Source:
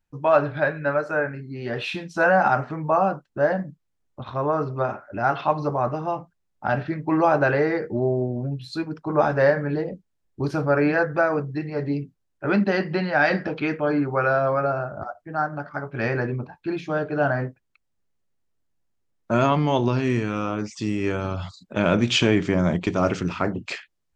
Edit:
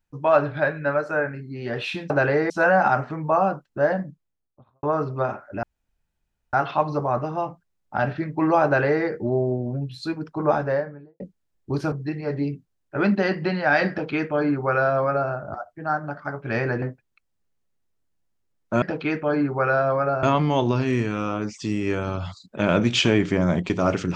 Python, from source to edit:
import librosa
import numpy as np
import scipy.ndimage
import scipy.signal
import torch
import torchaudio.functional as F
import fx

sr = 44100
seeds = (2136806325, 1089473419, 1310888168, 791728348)

y = fx.studio_fade_out(x, sr, start_s=3.54, length_s=0.89)
y = fx.studio_fade_out(y, sr, start_s=9.06, length_s=0.84)
y = fx.edit(y, sr, fx.insert_room_tone(at_s=5.23, length_s=0.9),
    fx.duplicate(start_s=7.35, length_s=0.4, to_s=2.1),
    fx.cut(start_s=10.62, length_s=0.79),
    fx.duplicate(start_s=13.39, length_s=1.41, to_s=19.4),
    fx.cut(start_s=16.31, length_s=1.09), tone=tone)